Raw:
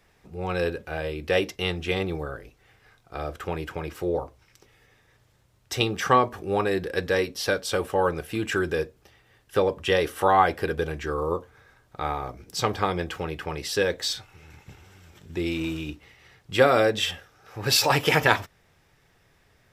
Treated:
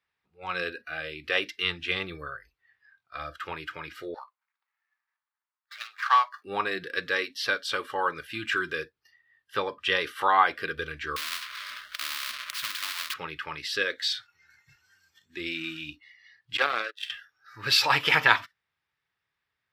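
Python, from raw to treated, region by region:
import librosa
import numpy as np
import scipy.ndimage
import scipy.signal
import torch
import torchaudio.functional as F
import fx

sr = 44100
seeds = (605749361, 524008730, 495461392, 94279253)

y = fx.chain(x, sr, fx.median_filter(points=15),
    fx.highpass(hz=810.0, slope=24), at=(4.14, 6.45))
y = fx.chain(y, sr, fx.halfwave_hold(),
    fx.notch(hz=7300.0, q=22.0),
    fx.spectral_comp(ratio=10.0), at=(11.16, 13.14))
y = fx.chain(y, sr, fx.highpass(hz=360.0, slope=24),
    fx.power_curve(exponent=2.0), at=(16.57, 17.1))
y = scipy.signal.sosfilt(scipy.signal.butter(2, 55.0, 'highpass', fs=sr, output='sos'), y)
y = fx.noise_reduce_blind(y, sr, reduce_db=19)
y = fx.band_shelf(y, sr, hz=2100.0, db=12.0, octaves=2.7)
y = F.gain(torch.from_numpy(y), -10.0).numpy()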